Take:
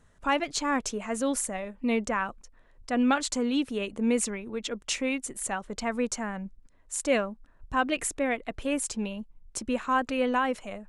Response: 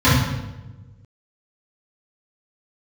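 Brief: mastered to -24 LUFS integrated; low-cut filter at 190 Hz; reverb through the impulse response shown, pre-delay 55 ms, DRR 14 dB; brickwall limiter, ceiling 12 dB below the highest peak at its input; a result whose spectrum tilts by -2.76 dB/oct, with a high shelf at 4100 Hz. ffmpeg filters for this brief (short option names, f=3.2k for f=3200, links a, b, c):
-filter_complex "[0:a]highpass=190,highshelf=f=4.1k:g=5,alimiter=limit=-21.5dB:level=0:latency=1,asplit=2[a][b];[1:a]atrim=start_sample=2205,adelay=55[c];[b][c]afir=irnorm=-1:irlink=0,volume=-38.5dB[d];[a][d]amix=inputs=2:normalize=0,volume=7.5dB"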